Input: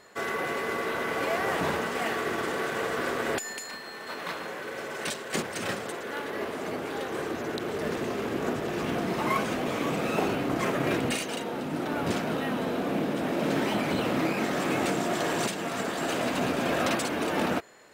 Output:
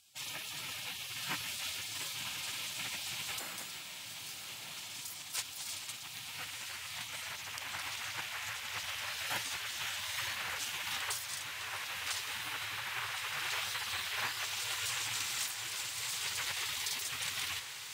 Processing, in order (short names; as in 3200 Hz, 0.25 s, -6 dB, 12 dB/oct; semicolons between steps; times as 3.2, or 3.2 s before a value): HPF 120 Hz 24 dB/oct; spectral gate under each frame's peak -20 dB weak; diffused feedback echo 1.126 s, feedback 58%, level -8.5 dB; gain +3 dB